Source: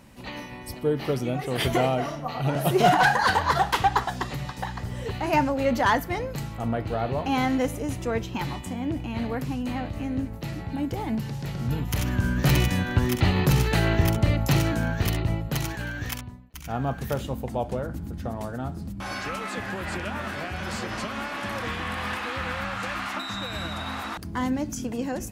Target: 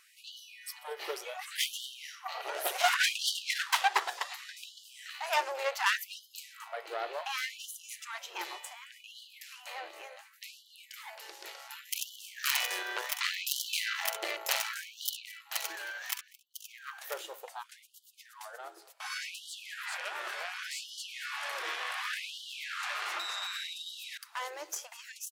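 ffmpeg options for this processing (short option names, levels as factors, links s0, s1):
-af "tiltshelf=f=840:g=-6,aeval=exprs='0.447*(cos(1*acos(clip(val(0)/0.447,-1,1)))-cos(1*PI/2))+0.158*(cos(4*acos(clip(val(0)/0.447,-1,1)))-cos(4*PI/2))':c=same,aecho=1:1:220:0.0794,afftfilt=real='re*gte(b*sr/1024,310*pow(2900/310,0.5+0.5*sin(2*PI*0.68*pts/sr)))':imag='im*gte(b*sr/1024,310*pow(2900/310,0.5+0.5*sin(2*PI*0.68*pts/sr)))':win_size=1024:overlap=0.75,volume=0.422"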